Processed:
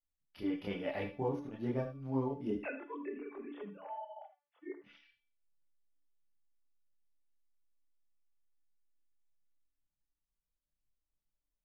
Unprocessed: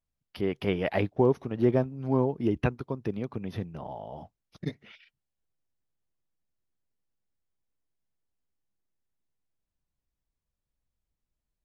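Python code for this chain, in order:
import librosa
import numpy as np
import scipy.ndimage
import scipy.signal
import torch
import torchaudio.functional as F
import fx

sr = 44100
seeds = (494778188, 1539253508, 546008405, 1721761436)

y = fx.sine_speech(x, sr, at=(2.63, 4.84))
y = fx.comb_fb(y, sr, f0_hz=290.0, decay_s=0.48, harmonics='all', damping=0.0, mix_pct=80)
y = fx.chorus_voices(y, sr, voices=6, hz=0.37, base_ms=27, depth_ms=3.9, mix_pct=60)
y = fx.rev_gated(y, sr, seeds[0], gate_ms=100, shape='rising', drr_db=10.0)
y = y * 10.0 ** (4.5 / 20.0)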